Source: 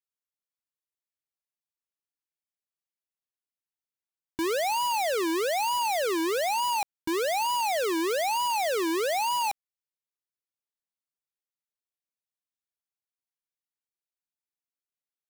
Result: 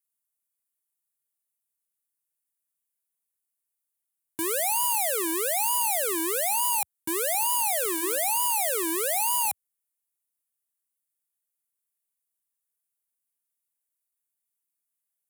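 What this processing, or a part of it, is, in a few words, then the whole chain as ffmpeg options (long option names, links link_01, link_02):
budget condenser microphone: -filter_complex "[0:a]asettb=1/sr,asplit=3[link_01][link_02][link_03];[link_01]atrim=end=7.764[link_04];[link_02]atrim=start=7.76:end=8.18,asetpts=PTS-STARTPTS,afade=type=in:duration=0.004:curve=qsin,afade=type=out:start_time=0.416:duration=0.004:curve=qsin,bandreject=frequency=326.6:width_type=h:width=4,bandreject=frequency=653.2:width_type=h:width=4,bandreject=frequency=979.8:width_type=h:width=4,bandreject=frequency=1306.4:width_type=h:width=4,bandreject=frequency=1633:width_type=h:width=4,bandreject=frequency=1959.6:width_type=h:width=4,bandreject=frequency=2286.2:width_type=h:width=4,bandreject=frequency=2612.8:width_type=h:width=4,bandreject=frequency=2939.4:width_type=h:width=4,bandreject=frequency=3266:width_type=h:width=4,bandreject=frequency=3592.6:width_type=h:width=4,bandreject=frequency=3919.2:width_type=h:width=4,bandreject=frequency=4245.8:width_type=h:width=4,bandreject=frequency=4572.4:width_type=h:width=4,bandreject=frequency=4899:width_type=h:width=4,bandreject=frequency=5225.6:width_type=h:width=4,bandreject=frequency=5552.2:width_type=h:width=4,bandreject=frequency=5878.8:width_type=h:width=4,bandreject=frequency=6205.4:width_type=h:width=4,bandreject=frequency=6532:width_type=h:width=4,bandreject=frequency=6858.6:width_type=h:width=4,bandreject=frequency=7185.2:width_type=h:width=4,bandreject=frequency=7511.8:width_type=h:width=4,bandreject=frequency=7838.4:width_type=h:width=4,bandreject=frequency=8165:width_type=h:width=4,bandreject=frequency=8491.6:width_type=h:width=4,bandreject=frequency=8818.2:width_type=h:width=4,bandreject=frequency=9144.8:width_type=h:width=4,bandreject=frequency=9471.4:width_type=h:width=4,bandreject=frequency=9798:width_type=h:width=4,bandreject=frequency=10124.6:width_type=h:width=4,bandreject=frequency=10451.2:width_type=h:width=4,bandreject=frequency=10777.8:width_type=h:width=4,bandreject=frequency=11104.4:width_type=h:width=4,bandreject=frequency=11431:width_type=h:width=4,bandreject=frequency=11757.6:width_type=h:width=4,bandreject=frequency=12084.2:width_type=h:width=4[link_05];[link_03]atrim=start=8.176[link_06];[link_04][link_05]acrossfade=duration=0.004:curve1=hsin:curve2=qsin[link_07];[link_07][link_06]acrossfade=duration=0.004:curve1=qsin:curve2=hsin,highpass=frequency=84:width=0.5412,highpass=frequency=84:width=1.3066,equalizer=frequency=460:width=0.38:gain=-3.5,highshelf=frequency=7100:width_type=q:width=1.5:gain=12"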